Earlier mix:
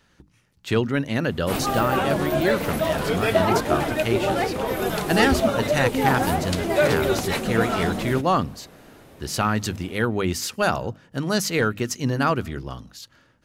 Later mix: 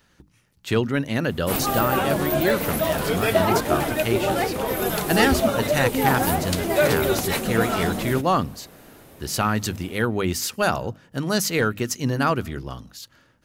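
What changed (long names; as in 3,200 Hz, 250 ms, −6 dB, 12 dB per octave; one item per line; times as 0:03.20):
background: add high-shelf EQ 9,000 Hz +5 dB
master: add high-shelf EQ 12,000 Hz +9.5 dB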